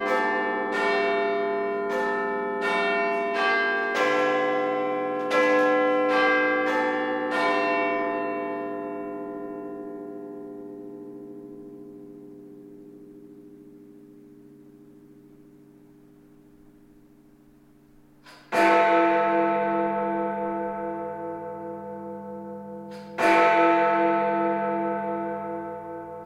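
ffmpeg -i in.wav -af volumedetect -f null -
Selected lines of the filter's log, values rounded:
mean_volume: -26.2 dB
max_volume: -6.9 dB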